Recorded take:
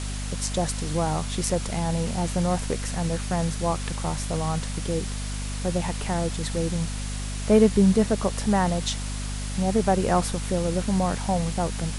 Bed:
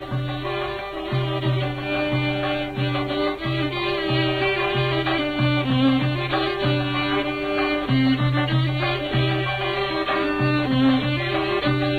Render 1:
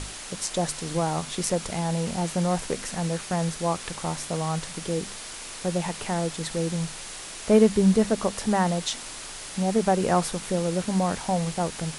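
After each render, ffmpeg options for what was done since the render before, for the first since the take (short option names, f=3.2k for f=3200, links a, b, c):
-af "bandreject=f=50:t=h:w=6,bandreject=f=100:t=h:w=6,bandreject=f=150:t=h:w=6,bandreject=f=200:t=h:w=6,bandreject=f=250:t=h:w=6"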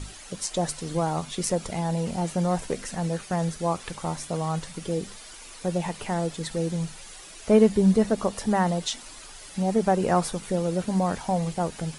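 -af "afftdn=nr=10:nf=-39"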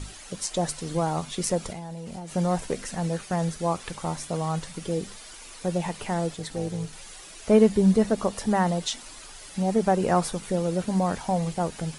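-filter_complex "[0:a]asettb=1/sr,asplit=3[a][b][c];[a]atrim=end=1.714[d];[b]atrim=start=1.71:end=2.35,asetpts=PTS-STARTPTS,afade=t=in:d=0.004:c=qsin,afade=t=out:st=0.636:d=0.004:c=qsin,acompressor=threshold=-32dB:ratio=16:attack=3.2:release=140:knee=1:detection=peak[e];[c]atrim=start=2.346[f];[d][e]acrossfade=d=0.004:c1=hsin:c2=qsin[g];[g][f]acrossfade=d=0.004:c1=qsin:c2=hsin,asettb=1/sr,asplit=3[h][i][j];[h]atrim=end=6.344[k];[i]atrim=start=6.34:end=6.93,asetpts=PTS-STARTPTS,afade=t=in:d=0.004:c=qsin,afade=t=out:st=0.586:d=0.004:c=qsin,tremolo=f=280:d=0.621[l];[j]atrim=start=6.926[m];[k][l]acrossfade=d=0.004:c1=hsin:c2=qsin[n];[n][m]acrossfade=d=0.004:c1=qsin:c2=hsin"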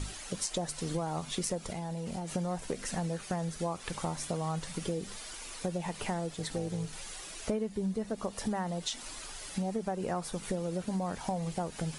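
-af "acompressor=threshold=-30dB:ratio=10"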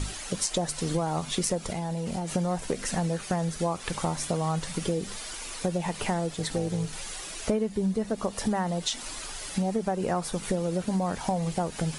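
-af "volume=6dB"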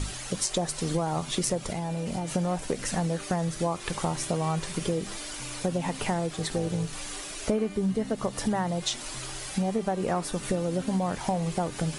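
-filter_complex "[1:a]volume=-24dB[a];[0:a][a]amix=inputs=2:normalize=0"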